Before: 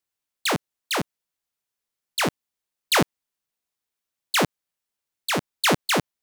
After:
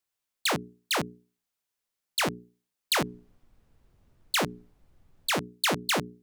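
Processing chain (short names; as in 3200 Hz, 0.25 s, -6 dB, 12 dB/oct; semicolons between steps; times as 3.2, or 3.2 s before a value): notches 60/120/180/240/300/360/420 Hz; compressor 4:1, threshold -24 dBFS, peak gain reduction 7.5 dB; 3.01–5.3 added noise brown -60 dBFS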